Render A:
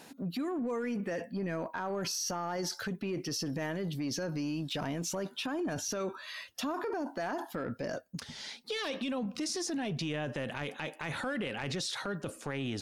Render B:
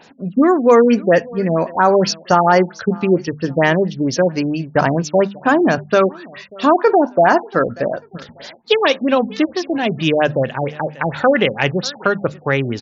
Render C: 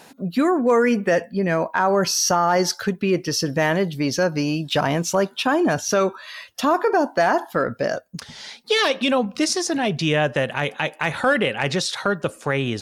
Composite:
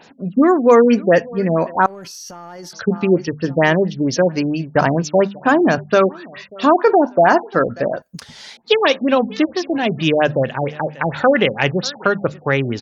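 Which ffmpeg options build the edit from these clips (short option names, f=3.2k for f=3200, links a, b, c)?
-filter_complex "[1:a]asplit=3[a][b][c];[a]atrim=end=1.862[d];[0:a]atrim=start=1.858:end=2.732[e];[b]atrim=start=2.728:end=8.022[f];[2:a]atrim=start=8.018:end=8.572[g];[c]atrim=start=8.568[h];[d][e]acrossfade=d=0.004:c1=hsin:c2=hsin[i];[i][f]acrossfade=d=0.004:c1=hsin:c2=hsin[j];[j][g]acrossfade=d=0.004:c1=hsin:c2=hsin[k];[k][h]acrossfade=d=0.004:c1=hsin:c2=hsin"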